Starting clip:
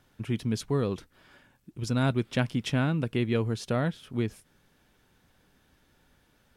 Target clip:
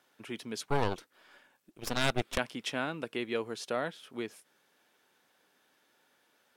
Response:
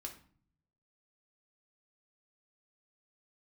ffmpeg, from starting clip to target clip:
-filter_complex "[0:a]highpass=410,asettb=1/sr,asplit=3[s0][s1][s2];[s0]atrim=end=0.694[s3];[s1]atrim=start=0.69:end=2.38,asetpts=PTS-STARTPTS,afade=t=in:d=0.004:c=qsin,afade=t=out:st=1.686:d=0.004:c=qsin,aeval=exprs='0.2*(cos(1*acos(clip(val(0)/0.2,-1,1)))-cos(1*PI/2))+0.0631*(cos(8*acos(clip(val(0)/0.2,-1,1)))-cos(8*PI/2))':c=same[s4];[s2]atrim=start=2.376[s5];[s3][s4]acrossfade=d=0.004:c1=hsin:c2=qsin[s6];[s6][s5]acrossfade=d=0.004:c1=qsin:c2=hsin,volume=0.841"

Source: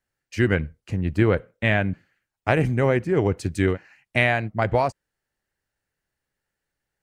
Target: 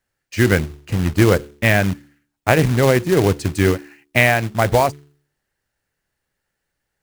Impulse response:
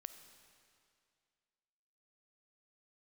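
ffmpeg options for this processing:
-af "bandreject=f=72.11:t=h:w=4,bandreject=f=144.22:t=h:w=4,bandreject=f=216.33:t=h:w=4,bandreject=f=288.44:t=h:w=4,bandreject=f=360.55:t=h:w=4,bandreject=f=432.66:t=h:w=4,acrusher=bits=3:mode=log:mix=0:aa=0.000001,volume=1.88"

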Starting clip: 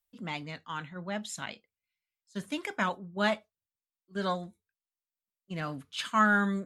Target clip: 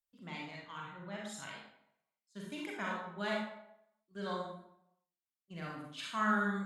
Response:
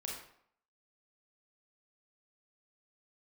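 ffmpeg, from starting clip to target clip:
-filter_complex "[1:a]atrim=start_sample=2205,asetrate=37044,aresample=44100[s0];[0:a][s0]afir=irnorm=-1:irlink=0,volume=0.422"

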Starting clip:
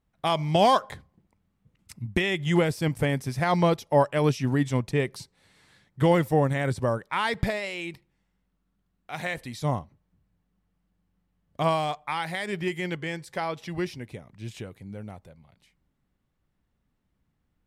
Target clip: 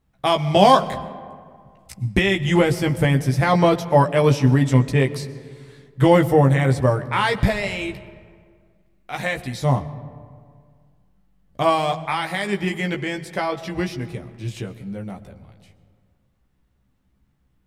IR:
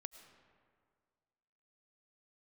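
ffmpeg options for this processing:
-filter_complex "[0:a]asplit=2[s0][s1];[1:a]atrim=start_sample=2205,lowshelf=f=250:g=8.5,adelay=15[s2];[s1][s2]afir=irnorm=-1:irlink=0,volume=1[s3];[s0][s3]amix=inputs=2:normalize=0,volume=1.78"

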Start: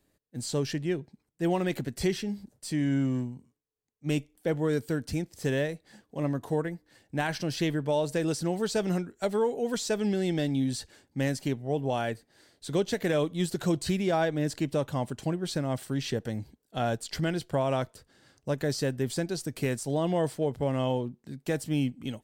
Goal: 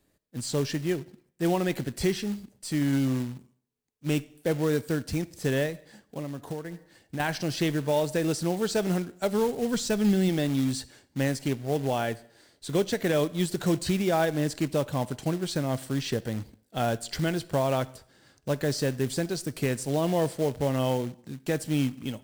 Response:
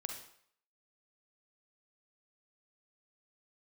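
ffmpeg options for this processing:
-filter_complex "[0:a]asplit=2[s0][s1];[1:a]atrim=start_sample=2205[s2];[s1][s2]afir=irnorm=-1:irlink=0,volume=0.266[s3];[s0][s3]amix=inputs=2:normalize=0,asettb=1/sr,asplit=3[s4][s5][s6];[s4]atrim=end=5.694[s7];[s5]atrim=start=5.69:end=7.2,asetpts=PTS-STARTPTS,afade=t=in:d=0.004:c=qsin,afade=t=out:st=1.506:d=0.004:c=qsin,acompressor=threshold=0.0282:ratio=16[s8];[s6]atrim=start=7.196[s9];[s7][s8]acrossfade=d=0.004:c1=hsin:c2=qsin[s10];[s10][s9]acrossfade=d=0.004:c1=qsin:c2=hsin,acrusher=bits=4:mode=log:mix=0:aa=0.000001,asplit=3[s11][s12][s13];[s11]afade=t=out:st=9.31:d=0.02[s14];[s12]asubboost=boost=2.5:cutoff=230,afade=t=in:st=9.31:d=0.02,afade=t=out:st=10.28:d=0.02[s15];[s13]afade=t=in:st=10.28:d=0.02[s16];[s14][s15][s16]amix=inputs=3:normalize=0"

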